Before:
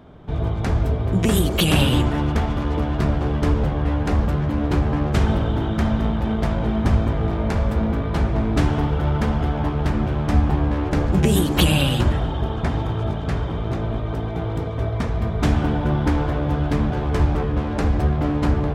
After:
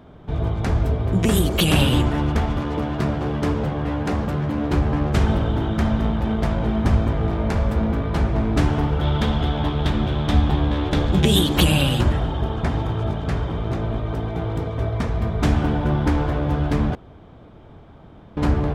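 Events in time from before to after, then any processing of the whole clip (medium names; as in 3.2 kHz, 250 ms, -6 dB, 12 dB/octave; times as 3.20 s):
2.60–4.72 s: high-pass 100 Hz
9.01–11.57 s: peaking EQ 3.5 kHz +14 dB 0.42 oct
16.95–18.37 s: room tone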